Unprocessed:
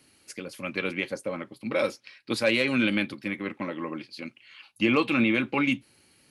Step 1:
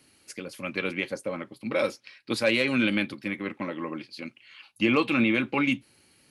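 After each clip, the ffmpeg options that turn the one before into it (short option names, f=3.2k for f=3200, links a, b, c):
-af anull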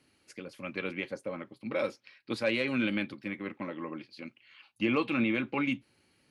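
-af "lowpass=f=3.5k:p=1,volume=-5dB"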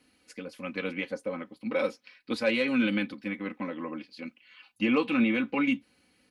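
-af "aecho=1:1:4:0.65,volume=1dB"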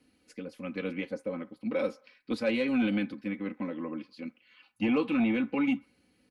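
-filter_complex "[0:a]acrossover=split=540|1900[a][b][c];[a]aeval=exprs='0.141*sin(PI/2*1.41*val(0)/0.141)':c=same[d];[b]aecho=1:1:64|128|192|256:0.158|0.0761|0.0365|0.0175[e];[d][e][c]amix=inputs=3:normalize=0,volume=-5.5dB"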